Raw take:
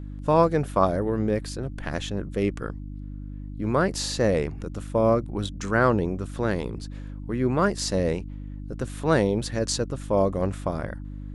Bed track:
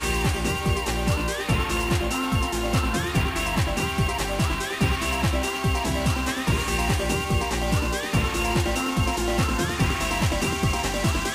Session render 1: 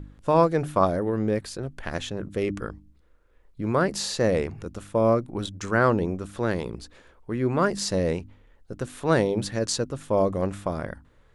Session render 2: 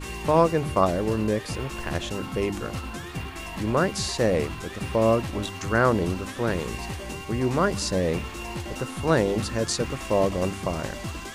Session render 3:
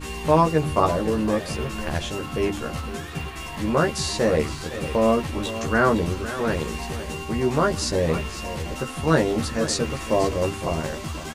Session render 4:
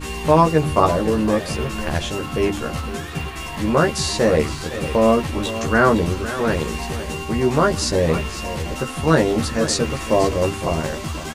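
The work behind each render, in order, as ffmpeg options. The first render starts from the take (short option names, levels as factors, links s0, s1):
-af "bandreject=f=50:t=h:w=4,bandreject=f=100:t=h:w=4,bandreject=f=150:t=h:w=4,bandreject=f=200:t=h:w=4,bandreject=f=250:t=h:w=4,bandreject=f=300:t=h:w=4"
-filter_complex "[1:a]volume=0.299[s0];[0:a][s0]amix=inputs=2:normalize=0"
-filter_complex "[0:a]asplit=2[s0][s1];[s1]adelay=13,volume=0.75[s2];[s0][s2]amix=inputs=2:normalize=0,aecho=1:1:509:0.224"
-af "volume=1.58,alimiter=limit=0.794:level=0:latency=1"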